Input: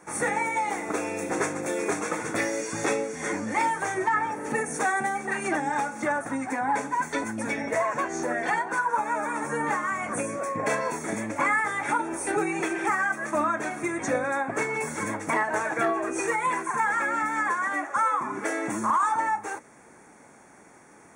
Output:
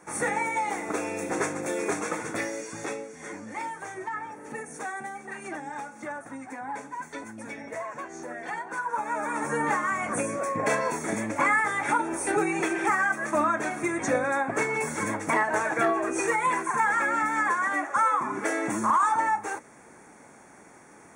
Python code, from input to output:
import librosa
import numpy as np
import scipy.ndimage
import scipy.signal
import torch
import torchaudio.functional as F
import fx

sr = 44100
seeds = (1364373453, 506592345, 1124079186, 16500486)

y = fx.gain(x, sr, db=fx.line((2.08, -1.0), (3.1, -9.5), (8.39, -9.5), (9.46, 1.0)))